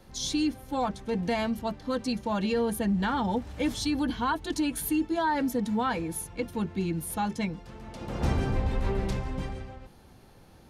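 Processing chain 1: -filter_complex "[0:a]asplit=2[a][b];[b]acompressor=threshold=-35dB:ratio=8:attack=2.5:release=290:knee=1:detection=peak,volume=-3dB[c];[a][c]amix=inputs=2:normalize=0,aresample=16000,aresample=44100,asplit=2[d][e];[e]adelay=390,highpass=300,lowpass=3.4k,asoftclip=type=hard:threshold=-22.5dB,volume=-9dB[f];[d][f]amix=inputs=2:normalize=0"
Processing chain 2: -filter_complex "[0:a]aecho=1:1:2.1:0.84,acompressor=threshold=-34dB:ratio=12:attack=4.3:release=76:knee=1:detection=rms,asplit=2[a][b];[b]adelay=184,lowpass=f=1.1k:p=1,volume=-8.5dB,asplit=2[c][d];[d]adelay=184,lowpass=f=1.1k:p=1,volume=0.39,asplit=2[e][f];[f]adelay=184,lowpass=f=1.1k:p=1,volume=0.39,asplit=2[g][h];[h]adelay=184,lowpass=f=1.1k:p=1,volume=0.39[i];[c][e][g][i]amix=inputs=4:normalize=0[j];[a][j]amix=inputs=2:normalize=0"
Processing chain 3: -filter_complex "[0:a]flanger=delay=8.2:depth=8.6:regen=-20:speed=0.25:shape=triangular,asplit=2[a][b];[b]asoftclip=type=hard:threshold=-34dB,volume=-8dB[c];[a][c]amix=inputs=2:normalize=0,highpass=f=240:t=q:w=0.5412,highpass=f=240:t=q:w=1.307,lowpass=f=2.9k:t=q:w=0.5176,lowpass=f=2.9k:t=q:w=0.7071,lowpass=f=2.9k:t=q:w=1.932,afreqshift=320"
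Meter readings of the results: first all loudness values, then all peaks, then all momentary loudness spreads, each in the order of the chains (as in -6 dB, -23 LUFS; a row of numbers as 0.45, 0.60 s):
-28.0, -38.5, -33.5 LUFS; -13.5, -25.0, -18.0 dBFS; 8, 4, 10 LU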